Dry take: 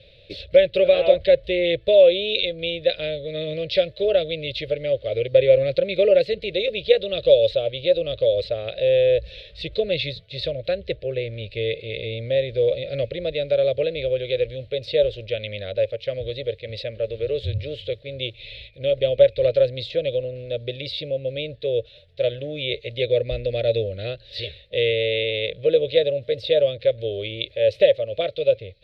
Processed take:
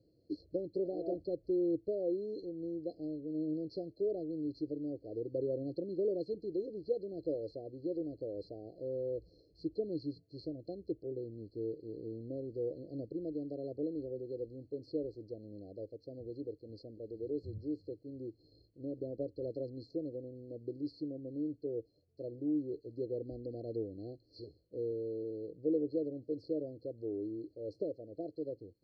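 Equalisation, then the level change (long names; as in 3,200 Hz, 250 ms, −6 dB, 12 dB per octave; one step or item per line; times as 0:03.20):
formant filter u
linear-phase brick-wall band-stop 780–4,100 Hz
Butterworth band-reject 1,200 Hz, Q 0.82
+6.0 dB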